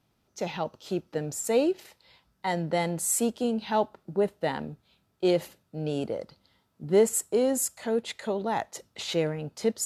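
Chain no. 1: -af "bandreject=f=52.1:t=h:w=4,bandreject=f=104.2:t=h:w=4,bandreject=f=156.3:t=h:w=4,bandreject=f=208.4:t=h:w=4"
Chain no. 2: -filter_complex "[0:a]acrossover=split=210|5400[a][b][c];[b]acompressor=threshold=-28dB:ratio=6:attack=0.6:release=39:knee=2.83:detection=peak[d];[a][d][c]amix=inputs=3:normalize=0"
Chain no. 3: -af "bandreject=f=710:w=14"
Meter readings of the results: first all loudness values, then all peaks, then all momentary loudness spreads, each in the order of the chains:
-28.5, -32.5, -29.0 LUFS; -11.5, -15.0, -11.5 dBFS; 12, 11, 12 LU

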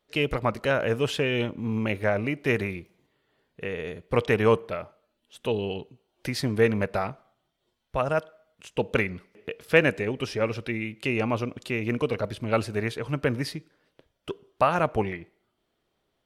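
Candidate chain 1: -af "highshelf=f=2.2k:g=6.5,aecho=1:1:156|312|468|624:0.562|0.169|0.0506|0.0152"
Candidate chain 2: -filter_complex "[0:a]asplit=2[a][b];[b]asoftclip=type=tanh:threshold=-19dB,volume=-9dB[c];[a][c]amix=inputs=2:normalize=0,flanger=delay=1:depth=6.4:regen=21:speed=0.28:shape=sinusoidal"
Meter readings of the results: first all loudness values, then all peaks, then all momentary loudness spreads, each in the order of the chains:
-25.0, -28.5 LUFS; -2.5, -7.5 dBFS; 15, 15 LU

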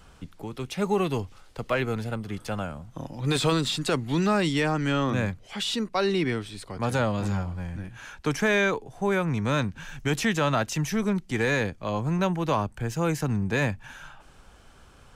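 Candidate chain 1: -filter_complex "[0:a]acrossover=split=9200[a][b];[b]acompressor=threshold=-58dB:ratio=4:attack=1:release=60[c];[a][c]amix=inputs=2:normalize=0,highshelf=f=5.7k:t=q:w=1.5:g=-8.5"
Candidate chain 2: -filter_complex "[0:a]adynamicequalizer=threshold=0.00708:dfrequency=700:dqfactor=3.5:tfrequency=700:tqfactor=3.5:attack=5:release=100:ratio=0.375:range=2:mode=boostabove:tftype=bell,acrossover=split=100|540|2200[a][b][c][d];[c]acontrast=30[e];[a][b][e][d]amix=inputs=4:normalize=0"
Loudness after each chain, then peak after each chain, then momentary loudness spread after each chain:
-26.5, -24.5 LUFS; -13.5, -8.5 dBFS; 13, 15 LU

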